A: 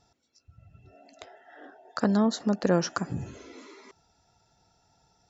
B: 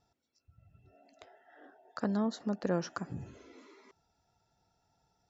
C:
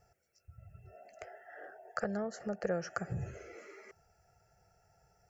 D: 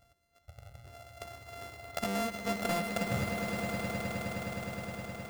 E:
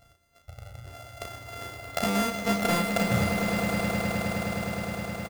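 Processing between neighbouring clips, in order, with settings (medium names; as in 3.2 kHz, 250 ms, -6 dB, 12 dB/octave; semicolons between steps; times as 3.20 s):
treble shelf 5 kHz -7 dB; trim -8 dB
compression 4:1, threshold -37 dBFS, peak gain reduction 10.5 dB; static phaser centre 1 kHz, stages 6; trim +9.5 dB
sorted samples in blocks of 64 samples; in parallel at -7.5 dB: integer overflow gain 28.5 dB; on the sum: echo with a slow build-up 104 ms, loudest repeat 8, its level -10 dB
doubling 34 ms -5 dB; trim +6.5 dB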